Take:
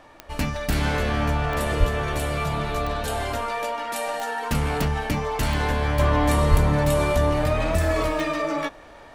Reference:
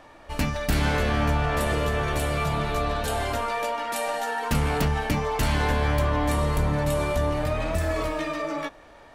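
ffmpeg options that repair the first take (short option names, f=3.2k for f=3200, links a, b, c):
-filter_complex "[0:a]adeclick=t=4,asplit=3[a][b][c];[a]afade=t=out:st=1.79:d=0.02[d];[b]highpass=f=140:w=0.5412,highpass=f=140:w=1.3066,afade=t=in:st=1.79:d=0.02,afade=t=out:st=1.91:d=0.02[e];[c]afade=t=in:st=1.91:d=0.02[f];[d][e][f]amix=inputs=3:normalize=0,asplit=3[g][h][i];[g]afade=t=out:st=6.5:d=0.02[j];[h]highpass=f=140:w=0.5412,highpass=f=140:w=1.3066,afade=t=in:st=6.5:d=0.02,afade=t=out:st=6.62:d=0.02[k];[i]afade=t=in:st=6.62:d=0.02[l];[j][k][l]amix=inputs=3:normalize=0,asetnsamples=n=441:p=0,asendcmd='5.99 volume volume -4dB',volume=0dB"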